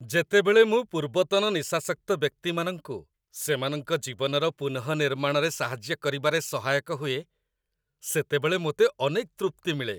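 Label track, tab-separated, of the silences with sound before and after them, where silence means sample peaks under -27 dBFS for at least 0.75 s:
7.190000	8.070000	silence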